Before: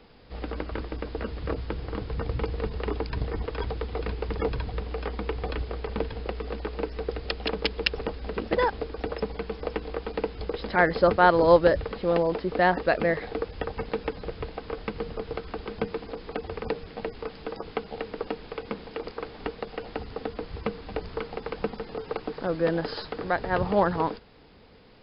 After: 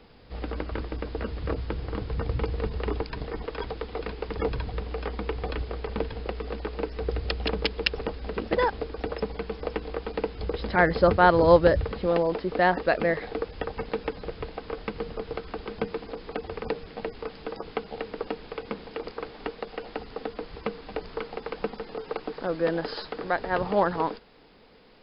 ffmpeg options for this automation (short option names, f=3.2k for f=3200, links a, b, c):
-af "asetnsamples=n=441:p=0,asendcmd='3.01 equalizer g -9;4.36 equalizer g -0.5;7.02 equalizer g 8;7.64 equalizer g 0;10.43 equalizer g 8;12.06 equalizer g -3;19.31 equalizer g -10',equalizer=f=82:t=o:w=1.7:g=2"